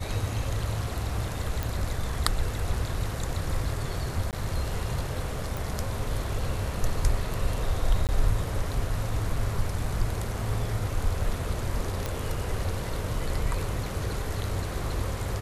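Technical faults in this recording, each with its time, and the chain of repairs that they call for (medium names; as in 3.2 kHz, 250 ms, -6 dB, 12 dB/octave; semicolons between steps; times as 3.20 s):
1.63 s: pop
4.31–4.33 s: dropout 18 ms
5.57 s: pop
8.07–8.09 s: dropout 18 ms
12.06 s: pop -15 dBFS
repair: de-click; interpolate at 4.31 s, 18 ms; interpolate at 8.07 s, 18 ms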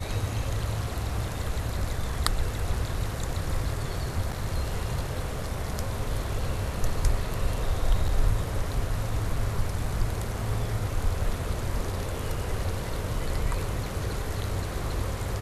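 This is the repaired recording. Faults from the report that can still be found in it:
nothing left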